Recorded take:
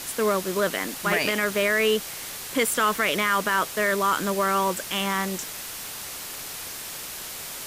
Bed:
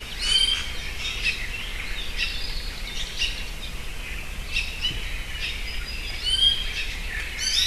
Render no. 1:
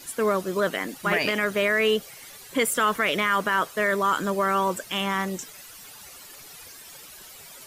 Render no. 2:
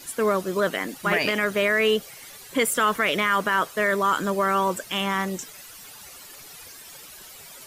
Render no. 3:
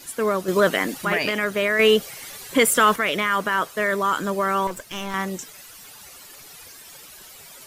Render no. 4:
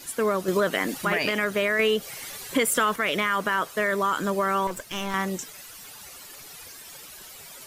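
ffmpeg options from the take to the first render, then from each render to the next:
-af "afftdn=nr=13:nf=-36"
-af "volume=1dB"
-filter_complex "[0:a]asettb=1/sr,asplit=3[a][b][c];[a]atrim=end=0.484[d];[b]atrim=start=0.48:end=1.05,asetpts=PTS-STARTPTS,afade=t=in:d=0.004:c=qsin,afade=t=out:st=0.566:d=0.004:c=qsin,acontrast=41[e];[c]atrim=start=1.046[f];[d][e]acrossfade=d=0.004:c1=hsin:c2=qsin[g];[g][f]acrossfade=d=0.004:c1=qsin:c2=hsin,asettb=1/sr,asplit=3[h][i][j];[h]atrim=end=1.794[k];[i]atrim=start=1.79:end=2.96,asetpts=PTS-STARTPTS,afade=t=in:d=0.004:c=qsin,afade=t=out:st=1.166:d=0.004:c=qsin,acontrast=32[l];[j]atrim=start=2.956[m];[k][l]acrossfade=d=0.004:c1=hsin:c2=qsin[n];[n][m]acrossfade=d=0.004:c1=qsin:c2=hsin,asettb=1/sr,asplit=3[o][p][q];[o]atrim=end=4.674[r];[p]atrim=start=4.67:end=5.14,asetpts=PTS-STARTPTS,afade=t=in:d=0.004:c=qsin,afade=t=out:st=0.466:d=0.004:c=qsin,aeval=exprs='(tanh(15.8*val(0)+0.7)-tanh(0.7))/15.8':c=same[s];[q]atrim=start=5.136[t];[r][s]acrossfade=d=0.004:c1=hsin:c2=qsin[u];[u][t]acrossfade=d=0.004:c1=qsin:c2=hsin"
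-af "acompressor=threshold=-20dB:ratio=4"

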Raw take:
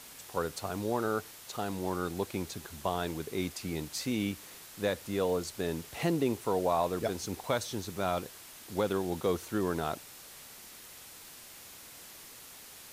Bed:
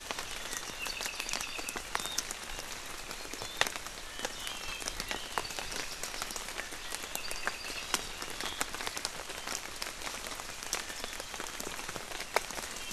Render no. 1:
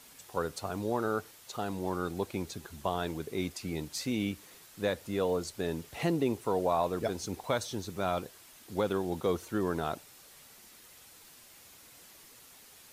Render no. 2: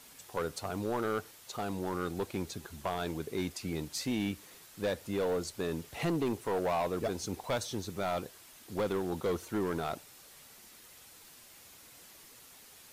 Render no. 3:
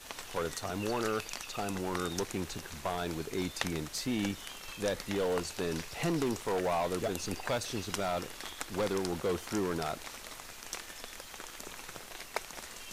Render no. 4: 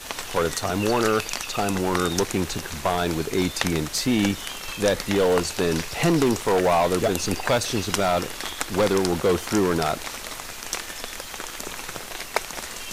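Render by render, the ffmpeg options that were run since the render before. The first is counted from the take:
-af "afftdn=nr=6:nf=-50"
-af "asoftclip=type=hard:threshold=-26.5dB"
-filter_complex "[1:a]volume=-6dB[a];[0:a][a]amix=inputs=2:normalize=0"
-af "volume=11.5dB,alimiter=limit=-1dB:level=0:latency=1"

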